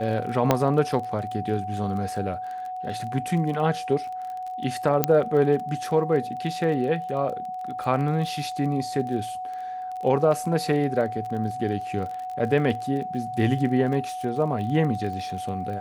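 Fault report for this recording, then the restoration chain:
surface crackle 25 per second −32 dBFS
whistle 740 Hz −30 dBFS
0:00.51: click −5 dBFS
0:05.04: click −4 dBFS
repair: click removal
notch filter 740 Hz, Q 30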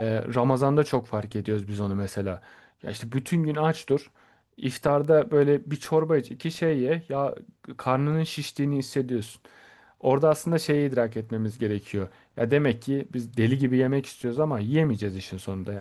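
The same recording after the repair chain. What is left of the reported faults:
0:05.04: click

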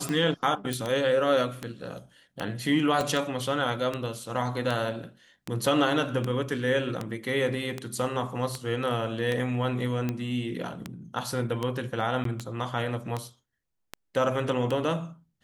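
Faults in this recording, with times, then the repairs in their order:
scratch tick 78 rpm −16 dBFS
0:00.73: click
0:03.01: click
0:12.24–0:12.25: drop-out 13 ms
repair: click removal
repair the gap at 0:12.24, 13 ms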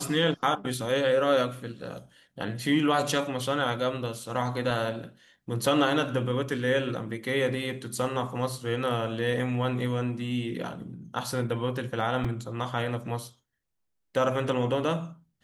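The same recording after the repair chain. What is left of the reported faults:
0:03.01: click

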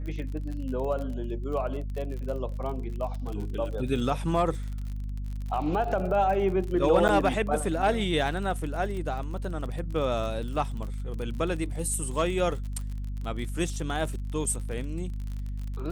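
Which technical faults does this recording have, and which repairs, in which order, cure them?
surface crackle 42 per second −34 dBFS
mains hum 50 Hz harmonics 5 −33 dBFS
0:07.08–0:07.09: drop-out 9.2 ms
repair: click removal
hum removal 50 Hz, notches 5
repair the gap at 0:07.08, 9.2 ms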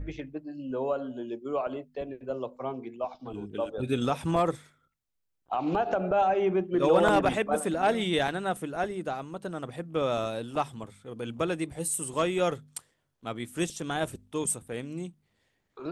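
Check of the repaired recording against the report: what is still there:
none of them is left

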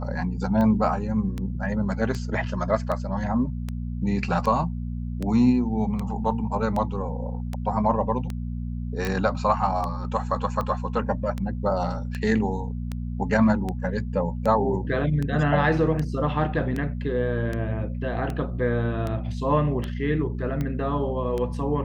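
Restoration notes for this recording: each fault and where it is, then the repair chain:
mains hum 60 Hz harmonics 4 −30 dBFS
scratch tick 78 rpm −17 dBFS
0:09.05: click −15 dBFS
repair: click removal
hum removal 60 Hz, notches 4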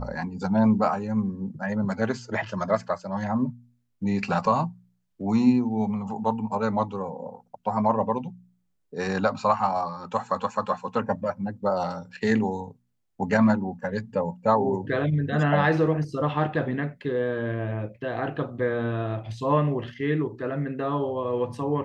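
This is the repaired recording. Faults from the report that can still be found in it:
none of them is left

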